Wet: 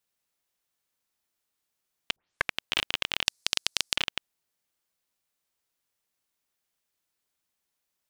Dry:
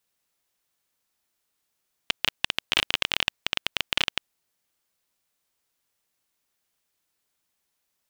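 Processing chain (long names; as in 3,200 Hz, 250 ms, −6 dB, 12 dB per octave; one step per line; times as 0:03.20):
0:02.16: tape start 0.42 s
0:03.26–0:03.96: flat-topped bell 6,800 Hz +15 dB
level −4.5 dB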